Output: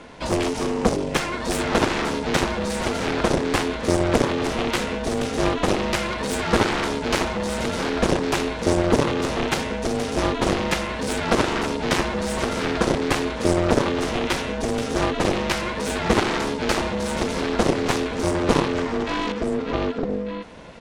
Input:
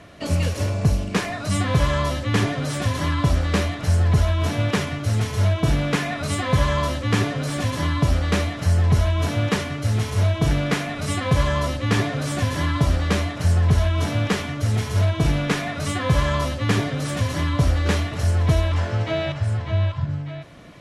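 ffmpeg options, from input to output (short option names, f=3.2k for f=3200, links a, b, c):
-af "aresample=22050,aresample=44100,aeval=exprs='0.501*(cos(1*acos(clip(val(0)/0.501,-1,1)))-cos(1*PI/2))+0.0891*(cos(3*acos(clip(val(0)/0.501,-1,1)))-cos(3*PI/2))+0.0708*(cos(4*acos(clip(val(0)/0.501,-1,1)))-cos(4*PI/2))+0.0891*(cos(6*acos(clip(val(0)/0.501,-1,1)))-cos(6*PI/2))+0.141*(cos(7*acos(clip(val(0)/0.501,-1,1)))-cos(7*PI/2))':c=same,aeval=exprs='val(0)*sin(2*PI*350*n/s)':c=same,volume=2dB"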